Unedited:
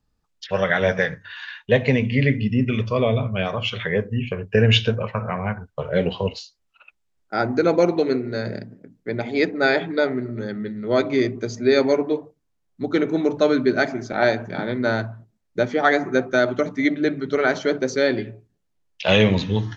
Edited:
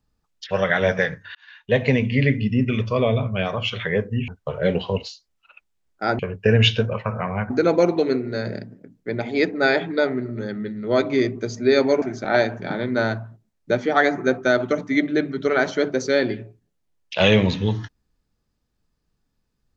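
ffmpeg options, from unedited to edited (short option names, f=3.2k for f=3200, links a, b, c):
-filter_complex "[0:a]asplit=6[a][b][c][d][e][f];[a]atrim=end=1.35,asetpts=PTS-STARTPTS,afade=t=out:st=1.346:d=0.004:c=hsin[g];[b]atrim=start=1.35:end=4.282,asetpts=PTS-STARTPTS,afade=t=in:d=0.48[h];[c]atrim=start=5.588:end=7.502[i];[d]atrim=start=4.278:end=5.592[j];[e]atrim=start=7.498:end=12.022[k];[f]atrim=start=13.898[l];[g][h]concat=n=2:v=0:a=1[m];[m][i]acrossfade=d=0.004:c1=hsin:c2=hsin[n];[n][j]acrossfade=d=0.004:c1=hsin:c2=hsin[o];[o][k]acrossfade=d=0.004:c1=hsin:c2=hsin[p];[p][l]acrossfade=d=0.004:c1=hsin:c2=hsin"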